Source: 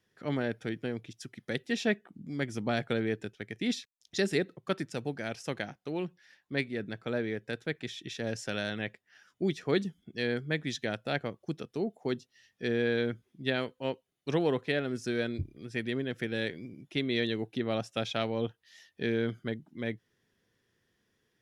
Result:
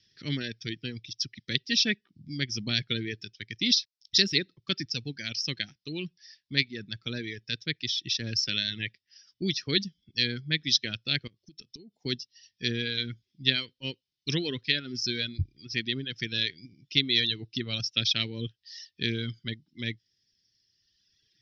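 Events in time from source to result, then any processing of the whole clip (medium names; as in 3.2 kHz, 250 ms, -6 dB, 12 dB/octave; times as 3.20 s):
11.27–11.98 s: compression 12:1, threshold -44 dBFS
whole clip: reverb removal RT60 1.7 s; FFT filter 110 Hz 0 dB, 210 Hz -6 dB, 330 Hz -7 dB, 740 Hz -25 dB, 1.3 kHz -14 dB, 1.9 kHz -3 dB, 5.4 kHz +15 dB, 8 kHz -27 dB; trim +6.5 dB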